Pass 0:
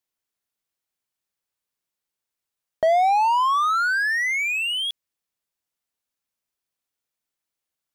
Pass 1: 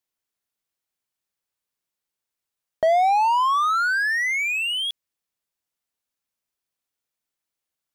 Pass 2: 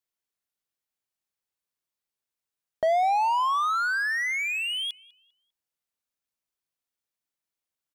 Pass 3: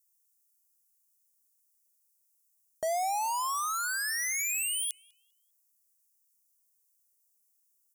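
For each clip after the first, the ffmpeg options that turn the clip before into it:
ffmpeg -i in.wav -af anull out.wav
ffmpeg -i in.wav -filter_complex "[0:a]asplit=2[link_01][link_02];[link_02]adelay=199,lowpass=frequency=2800:poles=1,volume=-20.5dB,asplit=2[link_03][link_04];[link_04]adelay=199,lowpass=frequency=2800:poles=1,volume=0.41,asplit=2[link_05][link_06];[link_06]adelay=199,lowpass=frequency=2800:poles=1,volume=0.41[link_07];[link_01][link_03][link_05][link_07]amix=inputs=4:normalize=0,volume=-4.5dB" out.wav
ffmpeg -i in.wav -af "aexciter=amount=14.8:drive=4.8:freq=5400,aeval=exprs='0.316*(cos(1*acos(clip(val(0)/0.316,-1,1)))-cos(1*PI/2))+0.0178*(cos(3*acos(clip(val(0)/0.316,-1,1)))-cos(3*PI/2))':channel_layout=same,volume=-6.5dB" out.wav

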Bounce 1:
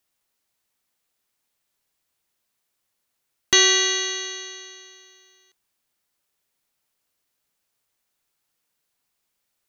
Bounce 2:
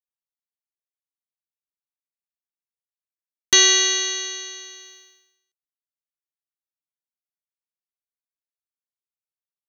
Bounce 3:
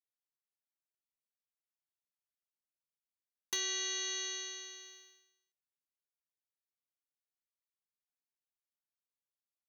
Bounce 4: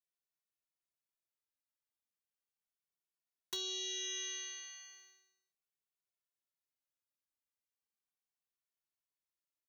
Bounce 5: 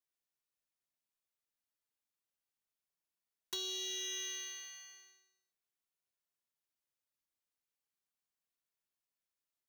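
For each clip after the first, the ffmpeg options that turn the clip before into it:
ffmpeg -i in.wav -af "agate=range=-33dB:threshold=-46dB:ratio=3:detection=peak,highshelf=frequency=3600:gain=7.5,volume=-2dB" out.wav
ffmpeg -i in.wav -af "acompressor=threshold=-25dB:ratio=6,aeval=exprs='0.126*(abs(mod(val(0)/0.126+3,4)-2)-1)':channel_layout=same,volume=-8.5dB" out.wav
ffmpeg -i in.wav -filter_complex "[0:a]asplit=2[link_01][link_02];[link_02]adelay=2.2,afreqshift=-0.36[link_03];[link_01][link_03]amix=inputs=2:normalize=1" out.wav
ffmpeg -i in.wav -af "acrusher=bits=4:mode=log:mix=0:aa=0.000001" out.wav

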